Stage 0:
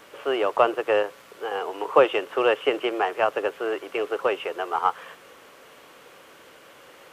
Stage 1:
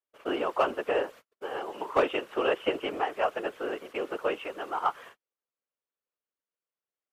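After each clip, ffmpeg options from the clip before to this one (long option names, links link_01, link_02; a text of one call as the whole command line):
ffmpeg -i in.wav -af "agate=range=-45dB:threshold=-40dB:ratio=16:detection=peak,asoftclip=type=hard:threshold=-8.5dB,afftfilt=real='hypot(re,im)*cos(2*PI*random(0))':imag='hypot(re,im)*sin(2*PI*random(1))':win_size=512:overlap=0.75" out.wav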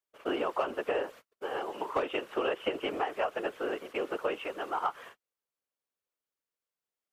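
ffmpeg -i in.wav -af "acompressor=threshold=-26dB:ratio=10" out.wav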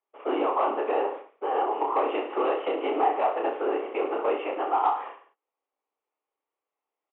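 ffmpeg -i in.wav -af "aresample=8000,asoftclip=type=tanh:threshold=-28.5dB,aresample=44100,highpass=frequency=290:width=0.5412,highpass=frequency=290:width=1.3066,equalizer=frequency=290:width_type=q:width=4:gain=5,equalizer=frequency=420:width_type=q:width=4:gain=4,equalizer=frequency=810:width_type=q:width=4:gain=10,equalizer=frequency=1100:width_type=q:width=4:gain=5,equalizer=frequency=1600:width_type=q:width=4:gain=-8,lowpass=frequency=2600:width=0.5412,lowpass=frequency=2600:width=1.3066,aecho=1:1:30|64.5|104.2|149.8|202.3:0.631|0.398|0.251|0.158|0.1,volume=4dB" out.wav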